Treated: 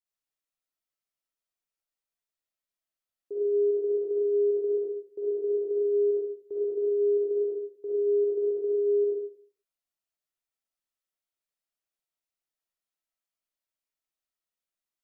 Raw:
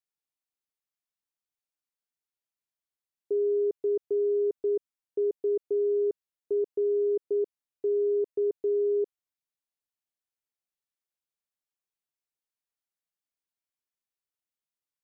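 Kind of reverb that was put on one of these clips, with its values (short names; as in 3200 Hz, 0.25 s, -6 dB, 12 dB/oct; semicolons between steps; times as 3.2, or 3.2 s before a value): digital reverb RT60 0.51 s, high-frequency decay 0.7×, pre-delay 20 ms, DRR -8 dB; gain -8 dB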